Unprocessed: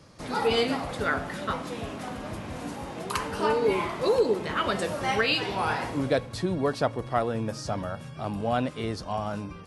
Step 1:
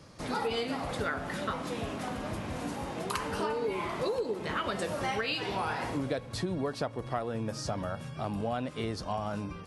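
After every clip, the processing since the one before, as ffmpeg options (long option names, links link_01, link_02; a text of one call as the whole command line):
ffmpeg -i in.wav -af "acompressor=threshold=-29dB:ratio=6" out.wav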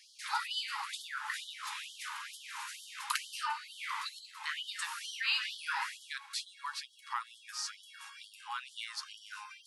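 ffmpeg -i in.wav -af "afftfilt=real='re*gte(b*sr/1024,780*pow(3000/780,0.5+0.5*sin(2*PI*2.2*pts/sr)))':imag='im*gte(b*sr/1024,780*pow(3000/780,0.5+0.5*sin(2*PI*2.2*pts/sr)))':win_size=1024:overlap=0.75,volume=2.5dB" out.wav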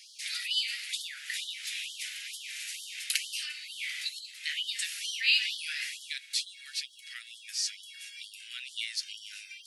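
ffmpeg -i in.wav -af "asuperstop=centerf=870:order=8:qfactor=0.51,volume=7.5dB" out.wav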